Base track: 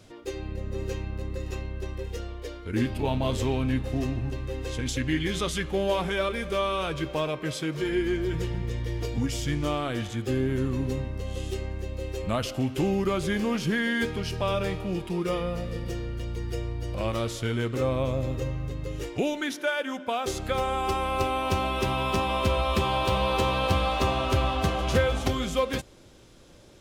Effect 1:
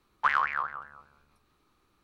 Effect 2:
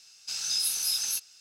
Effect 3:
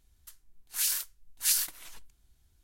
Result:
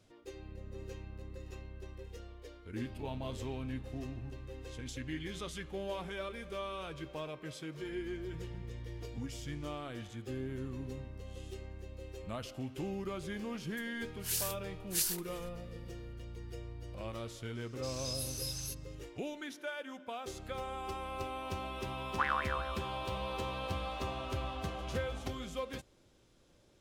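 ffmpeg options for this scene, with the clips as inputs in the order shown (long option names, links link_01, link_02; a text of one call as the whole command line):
ffmpeg -i bed.wav -i cue0.wav -i cue1.wav -i cue2.wav -filter_complex "[0:a]volume=-13.5dB[link_01];[2:a]asoftclip=type=hard:threshold=-18dB[link_02];[3:a]atrim=end=2.63,asetpts=PTS-STARTPTS,volume=-6.5dB,afade=type=in:duration=0.004:curve=hsin,afade=type=out:start_time=2.626:duration=0.004:curve=hsin,adelay=13500[link_03];[link_02]atrim=end=1.4,asetpts=PTS-STARTPTS,volume=-12.5dB,afade=type=in:duration=0.004:curve=hsin,afade=type=out:start_time=1.396:duration=0.004:curve=hsin,adelay=17550[link_04];[1:a]atrim=end=2.03,asetpts=PTS-STARTPTS,volume=-7.5dB,afade=type=in:duration=0.004:curve=hsin,afade=type=out:start_time=2.026:duration=0.004:curve=hsin,adelay=21950[link_05];[link_01][link_03][link_04][link_05]amix=inputs=4:normalize=0" out.wav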